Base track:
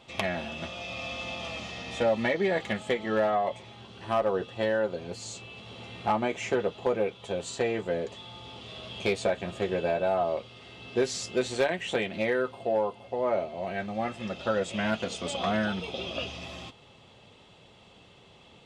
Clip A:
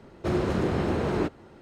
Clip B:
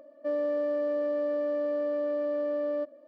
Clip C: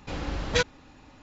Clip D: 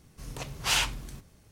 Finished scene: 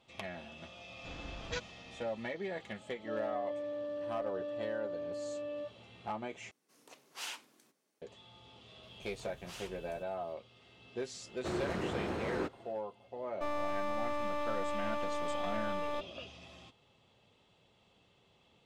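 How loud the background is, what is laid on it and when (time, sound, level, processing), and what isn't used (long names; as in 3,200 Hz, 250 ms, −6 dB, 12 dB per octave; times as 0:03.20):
base track −13 dB
0:00.97: mix in C −15 dB
0:02.76: mix in B −10.5 dB + all-pass dispersion highs, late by 102 ms, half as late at 400 Hz
0:06.51: overwrite with D −16.5 dB + high-pass filter 260 Hz 24 dB per octave
0:08.83: mix in D −15 dB + downward compressor 2 to 1, threshold −36 dBFS
0:11.20: mix in A −7 dB, fades 0.10 s + low-shelf EQ 330 Hz −7.5 dB
0:13.16: mix in B −3.5 dB + wavefolder on the positive side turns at −35.5 dBFS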